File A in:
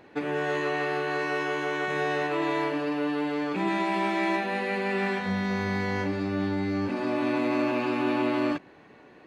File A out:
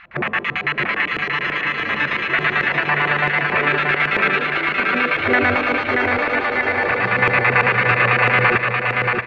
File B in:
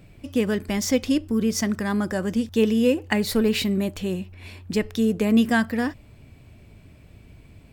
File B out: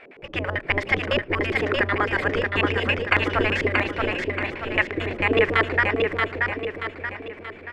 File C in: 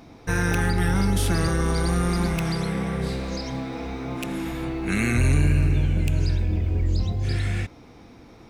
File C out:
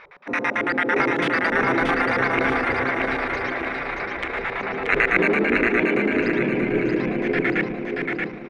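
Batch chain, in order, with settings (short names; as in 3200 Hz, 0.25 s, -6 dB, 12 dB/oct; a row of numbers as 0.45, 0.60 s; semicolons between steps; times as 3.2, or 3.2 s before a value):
spectral gate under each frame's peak -15 dB weak; LFO low-pass square 9 Hz 420–2000 Hz; on a send: feedback echo 0.63 s, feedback 46%, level -3.5 dB; on the sum: normalise peaks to -2 dBFS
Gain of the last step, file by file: +18.0, +11.5, +9.0 dB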